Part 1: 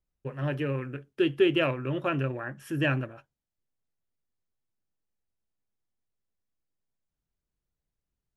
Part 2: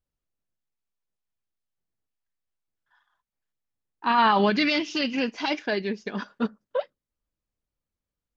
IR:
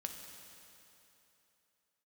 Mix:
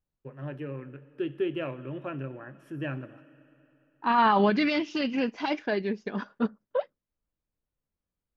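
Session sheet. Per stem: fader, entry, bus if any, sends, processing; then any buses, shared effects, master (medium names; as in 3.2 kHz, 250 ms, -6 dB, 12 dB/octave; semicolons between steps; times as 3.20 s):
-9.5 dB, 0.00 s, send -7 dB, high-pass 150 Hz; bass shelf 190 Hz +5.5 dB
-0.5 dB, 0.00 s, no send, none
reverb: on, RT60 3.1 s, pre-delay 3 ms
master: treble shelf 2.9 kHz -11.5 dB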